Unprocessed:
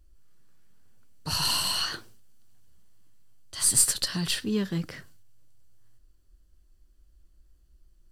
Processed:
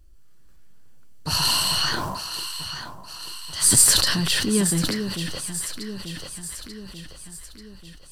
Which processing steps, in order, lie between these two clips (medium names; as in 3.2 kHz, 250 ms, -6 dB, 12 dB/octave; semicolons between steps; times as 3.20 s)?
on a send: echo whose repeats swap between lows and highs 444 ms, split 1 kHz, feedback 73%, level -7 dB; on the sum: decay stretcher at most 29 dB/s; trim +5 dB